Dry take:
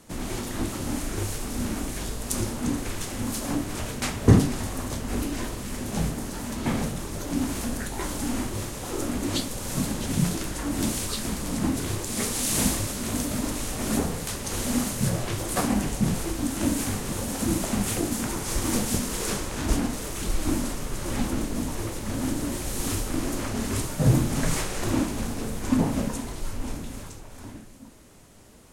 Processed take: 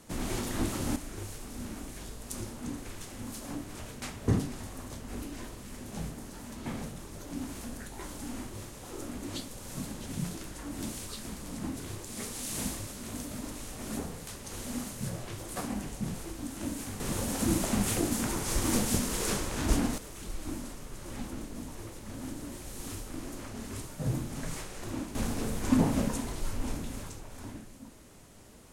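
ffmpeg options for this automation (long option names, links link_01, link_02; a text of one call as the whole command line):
ffmpeg -i in.wav -af "asetnsamples=nb_out_samples=441:pad=0,asendcmd='0.96 volume volume -11dB;17 volume volume -2.5dB;19.98 volume volume -12dB;25.15 volume volume -2dB',volume=-2dB" out.wav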